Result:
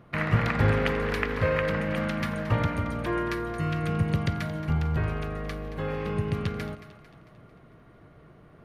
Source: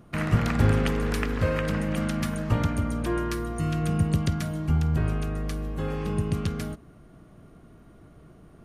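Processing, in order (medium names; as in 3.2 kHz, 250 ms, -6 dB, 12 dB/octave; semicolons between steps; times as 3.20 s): graphic EQ 125/500/1000/2000/4000/8000 Hz +7/+7/+6/+10/+5/-6 dB; two-band feedback delay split 580 Hz, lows 91 ms, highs 224 ms, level -13.5 dB; trim -7 dB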